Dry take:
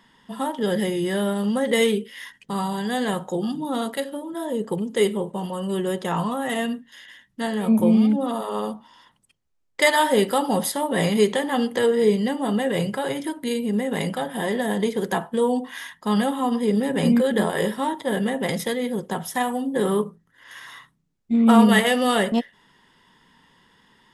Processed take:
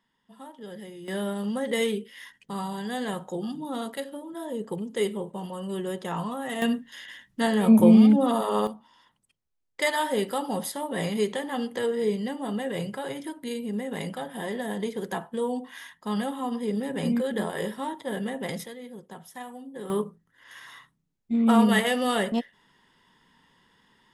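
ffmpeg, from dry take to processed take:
ffmpeg -i in.wav -af "asetnsamples=nb_out_samples=441:pad=0,asendcmd='1.08 volume volume -6.5dB;6.62 volume volume 2dB;8.67 volume volume -7.5dB;18.66 volume volume -16dB;19.9 volume volume -5dB',volume=-18dB" out.wav

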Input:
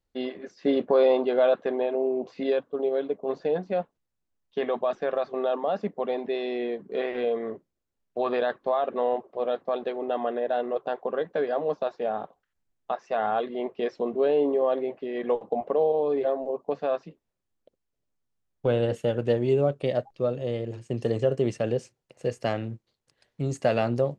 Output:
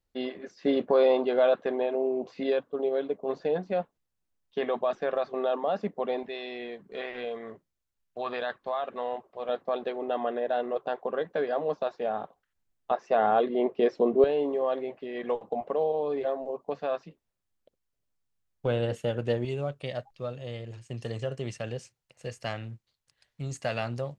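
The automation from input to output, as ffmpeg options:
ffmpeg -i in.wav -af "asetnsamples=nb_out_samples=441:pad=0,asendcmd='6.23 equalizer g -10.5;9.49 equalizer g -2.5;12.91 equalizer g 5;14.24 equalizer g -5;19.45 equalizer g -12.5',equalizer=frequency=350:width_type=o:width=2.3:gain=-2" out.wav

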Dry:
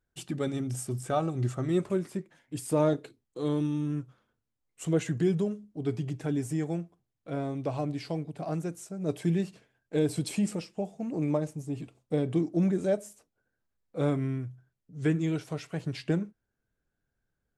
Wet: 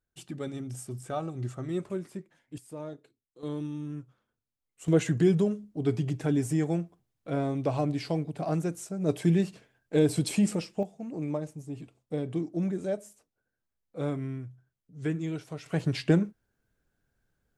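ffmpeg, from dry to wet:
ffmpeg -i in.wav -af "asetnsamples=nb_out_samples=441:pad=0,asendcmd='2.58 volume volume -15dB;3.43 volume volume -6dB;4.88 volume volume 3.5dB;10.83 volume volume -4dB;15.66 volume volume 5.5dB',volume=-5dB" out.wav

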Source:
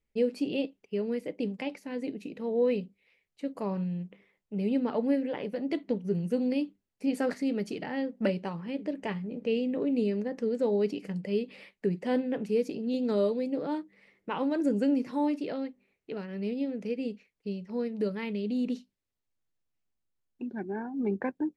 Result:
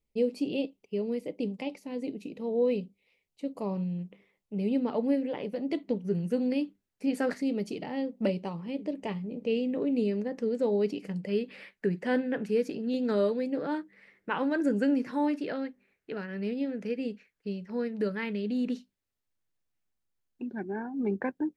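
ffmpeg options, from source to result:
ffmpeg -i in.wav -af "asetnsamples=nb_out_samples=441:pad=0,asendcmd='3.99 equalizer g -5.5;6.02 equalizer g 2.5;7.41 equalizer g -9.5;9.5 equalizer g -1;11.29 equalizer g 9.5;18.75 equalizer g 2',equalizer=frequency=1600:width_type=o:width=0.56:gain=-12.5" out.wav

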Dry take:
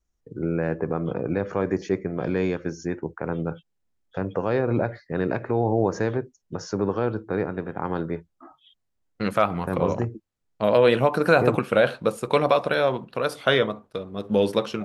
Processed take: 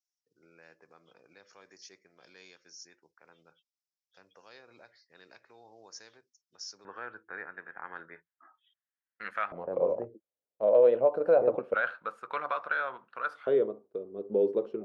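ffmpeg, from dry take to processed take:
ffmpeg -i in.wav -af "asetnsamples=nb_out_samples=441:pad=0,asendcmd='6.85 bandpass f 1700;9.52 bandpass f 550;11.74 bandpass f 1400;13.47 bandpass f 400',bandpass=frequency=5300:width_type=q:width=4.1:csg=0" out.wav

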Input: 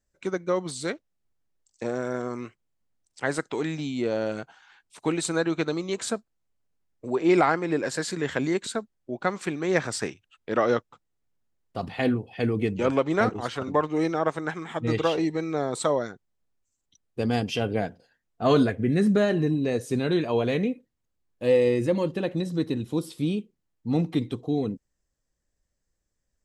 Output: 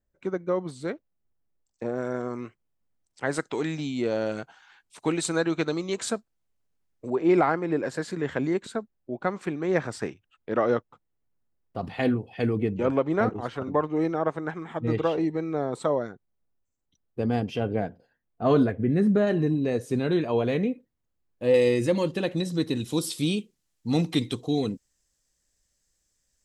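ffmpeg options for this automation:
ffmpeg -i in.wav -af "asetnsamples=nb_out_samples=441:pad=0,asendcmd='1.98 equalizer g -6.5;3.33 equalizer g 0;7.1 equalizer g -10.5;11.85 equalizer g -3;12.57 equalizer g -12.5;19.27 equalizer g -5;21.54 equalizer g 6.5;22.75 equalizer g 13',equalizer=frequency=7300:width_type=o:width=3:gain=-14" out.wav

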